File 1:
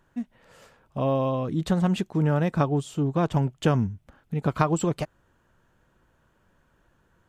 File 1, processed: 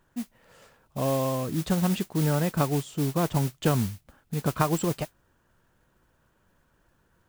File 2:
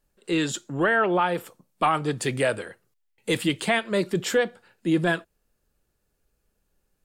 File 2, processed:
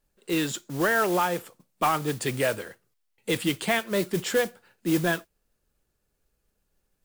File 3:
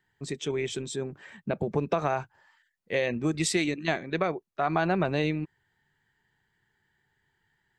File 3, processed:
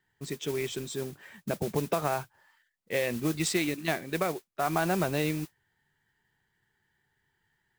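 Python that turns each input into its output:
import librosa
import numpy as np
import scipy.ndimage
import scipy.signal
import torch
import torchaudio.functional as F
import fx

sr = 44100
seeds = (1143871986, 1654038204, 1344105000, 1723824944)

y = fx.mod_noise(x, sr, seeds[0], snr_db=14)
y = y * librosa.db_to_amplitude(-2.0)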